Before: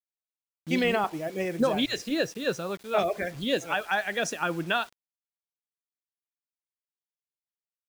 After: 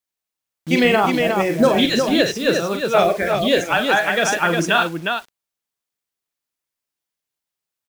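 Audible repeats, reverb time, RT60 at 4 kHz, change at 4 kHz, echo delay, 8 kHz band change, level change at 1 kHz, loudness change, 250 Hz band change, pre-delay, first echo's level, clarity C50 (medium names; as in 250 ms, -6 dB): 2, no reverb, no reverb, +11.0 dB, 41 ms, +11.0 dB, +11.0 dB, +10.5 dB, +10.5 dB, no reverb, -7.0 dB, no reverb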